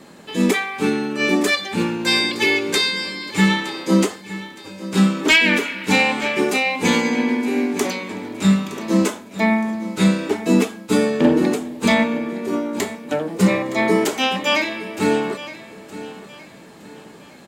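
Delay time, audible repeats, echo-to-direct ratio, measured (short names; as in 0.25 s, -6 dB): 0.916 s, 3, -15.0 dB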